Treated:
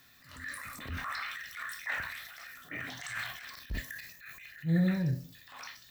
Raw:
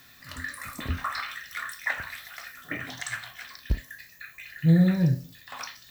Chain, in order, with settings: dynamic EQ 2000 Hz, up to +4 dB, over -43 dBFS, Q 1.4; transient shaper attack -8 dB, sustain +6 dB, from 3.13 s sustain +11 dB, from 4.47 s sustain +3 dB; gain -7 dB

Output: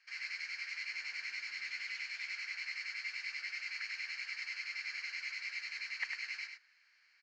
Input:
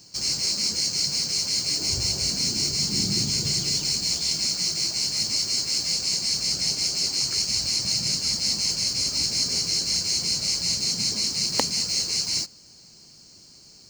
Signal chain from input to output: time stretch by phase-locked vocoder 0.52×; Butterworth band-pass 1900 Hz, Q 2.6; echo 99 ms -6 dB; gain +5.5 dB

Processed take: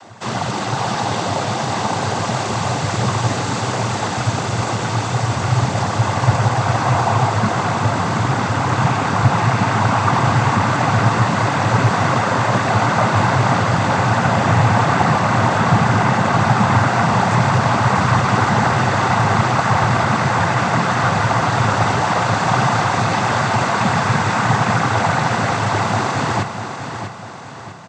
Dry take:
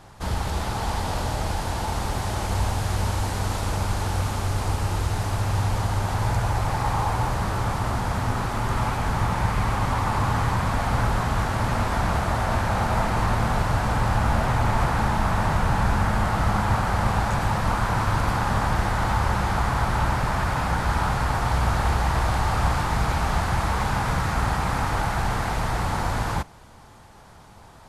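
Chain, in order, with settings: noise vocoder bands 16; feedback echo 0.646 s, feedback 43%, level -8.5 dB; gain +9 dB

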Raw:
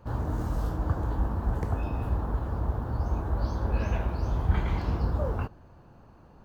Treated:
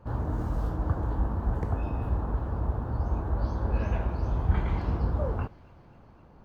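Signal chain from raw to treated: high shelf 3400 Hz -9.5 dB; thin delay 0.258 s, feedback 74%, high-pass 2400 Hz, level -16.5 dB

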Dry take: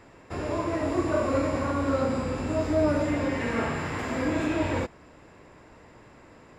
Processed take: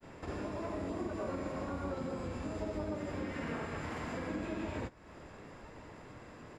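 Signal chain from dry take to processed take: grains 0.112 s, grains 24/s, pitch spread up and down by 0 st; compressor 3:1, threshold -43 dBFS, peak gain reduction 15.5 dB; harmoniser -7 st -5 dB, -3 st -12 dB, +5 st -17 dB; gain +1.5 dB

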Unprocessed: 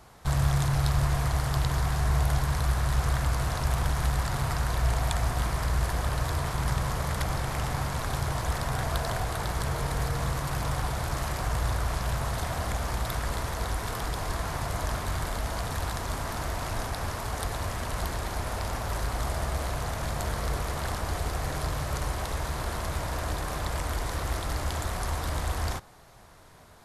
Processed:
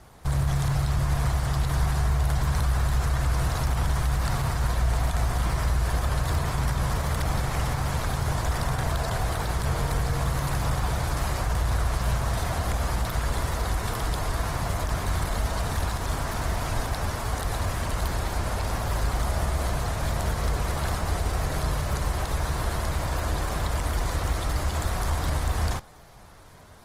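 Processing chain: limiter -20.5 dBFS, peak gain reduction 9.5 dB; low shelf 140 Hz +3.5 dB; gain +2.5 dB; Opus 20 kbps 48000 Hz

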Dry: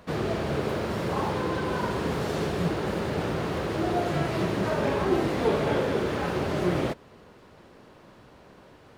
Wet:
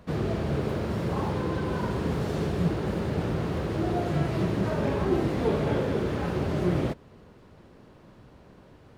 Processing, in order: low shelf 290 Hz +10 dB; gain -5 dB

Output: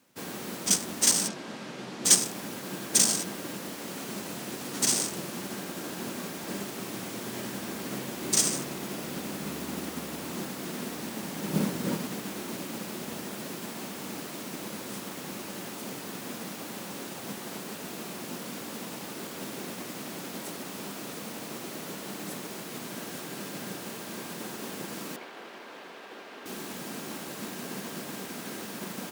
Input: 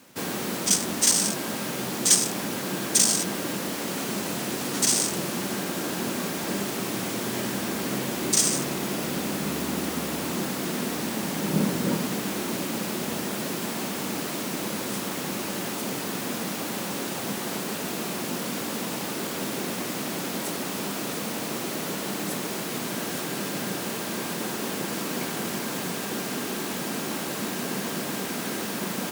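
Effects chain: 1.28–2.05 BPF 110–5100 Hz; 25.16–26.46 three-band isolator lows -23 dB, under 330 Hz, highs -20 dB, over 4000 Hz; upward expander 1.5:1, over -40 dBFS

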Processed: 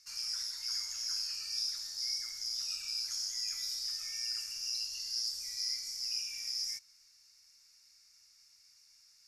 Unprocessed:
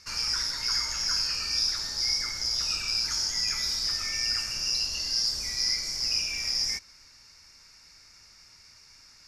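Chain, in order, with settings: pre-emphasis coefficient 0.9; gain -5.5 dB

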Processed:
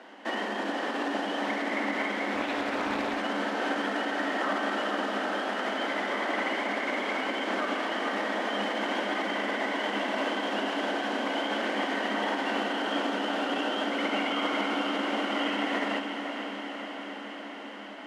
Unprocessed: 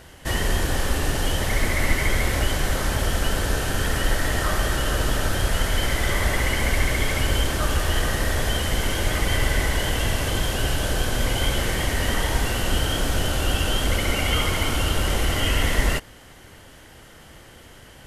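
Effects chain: LPF 3200 Hz 12 dB/oct; limiter -18.5 dBFS, peak gain reduction 11 dB; rippled Chebyshev high-pass 200 Hz, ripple 6 dB; diffused feedback echo 0.481 s, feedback 74%, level -8 dB; reverb RT60 1.0 s, pre-delay 37 ms, DRR 12 dB; 2.35–3.21 Doppler distortion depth 0.36 ms; gain +3.5 dB

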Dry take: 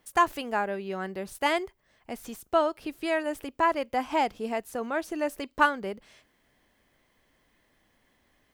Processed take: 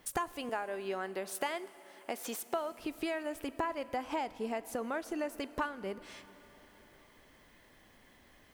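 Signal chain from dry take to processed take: 0.49–2.72 HPF 340 Hz 12 dB/oct; compressor 6:1, threshold -40 dBFS, peak gain reduction 22 dB; plate-style reverb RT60 4.7 s, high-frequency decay 0.95×, DRR 15.5 dB; gain +6 dB

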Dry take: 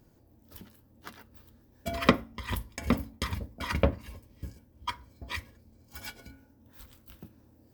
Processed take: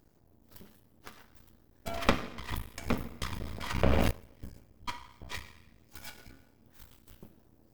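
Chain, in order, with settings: two-slope reverb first 0.8 s, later 2.2 s, DRR 8 dB; half-wave rectifier; 3.41–4.11 sustainer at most 20 dB/s

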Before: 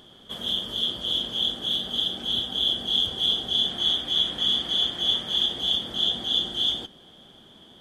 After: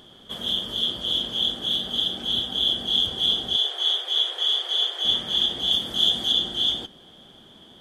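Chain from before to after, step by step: 3.56–5.05 elliptic high-pass 400 Hz, stop band 50 dB; 5.7–6.31 high shelf 8500 Hz -> 4300 Hz +10 dB; gain +1.5 dB

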